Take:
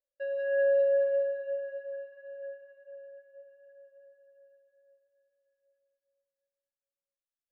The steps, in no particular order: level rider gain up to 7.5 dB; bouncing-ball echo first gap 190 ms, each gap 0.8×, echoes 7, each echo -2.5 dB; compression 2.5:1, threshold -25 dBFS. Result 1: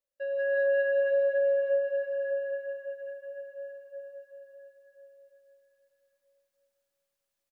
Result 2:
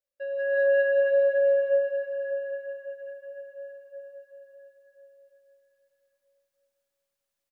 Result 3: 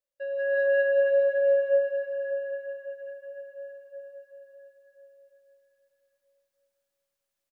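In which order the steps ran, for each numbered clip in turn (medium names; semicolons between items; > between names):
bouncing-ball echo > level rider > compression; bouncing-ball echo > compression > level rider; compression > bouncing-ball echo > level rider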